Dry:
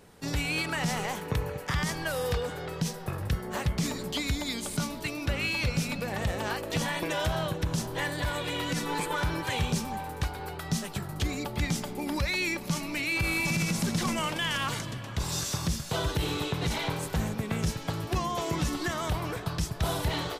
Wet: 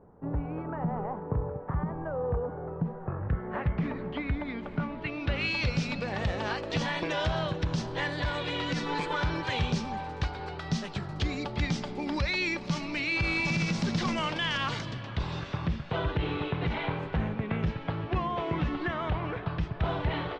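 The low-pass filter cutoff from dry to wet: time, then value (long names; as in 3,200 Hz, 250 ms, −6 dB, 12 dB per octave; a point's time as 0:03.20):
low-pass filter 24 dB per octave
0:02.75 1,100 Hz
0:03.66 2,200 Hz
0:04.88 2,200 Hz
0:05.49 5,200 Hz
0:14.98 5,200 Hz
0:15.41 2,900 Hz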